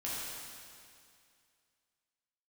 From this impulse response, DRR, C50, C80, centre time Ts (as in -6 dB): -8.5 dB, -3.5 dB, -1.5 dB, 0.154 s